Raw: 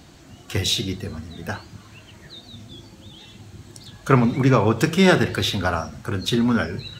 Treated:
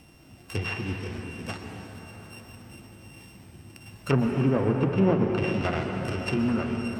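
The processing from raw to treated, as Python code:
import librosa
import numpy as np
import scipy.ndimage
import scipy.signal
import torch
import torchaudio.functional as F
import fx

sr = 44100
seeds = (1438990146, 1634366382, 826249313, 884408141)

y = np.r_[np.sort(x[:len(x) // 16 * 16].reshape(-1, 16), axis=1).ravel(), x[len(x) // 16 * 16:]]
y = fx.env_lowpass_down(y, sr, base_hz=920.0, full_db=-14.0)
y = fx.rev_plate(y, sr, seeds[0], rt60_s=4.7, hf_ratio=0.55, predelay_ms=105, drr_db=3.0)
y = y * 10.0 ** (-6.0 / 20.0)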